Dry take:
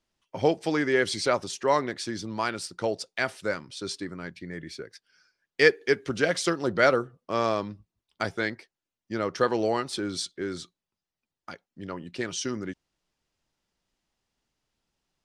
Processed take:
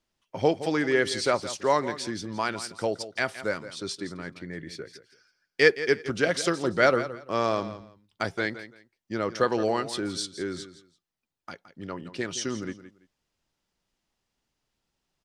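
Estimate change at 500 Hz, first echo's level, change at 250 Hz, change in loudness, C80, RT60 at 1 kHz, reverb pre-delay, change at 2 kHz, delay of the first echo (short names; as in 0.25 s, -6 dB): 0.0 dB, -13.5 dB, 0.0 dB, 0.0 dB, none, none, none, 0.0 dB, 0.168 s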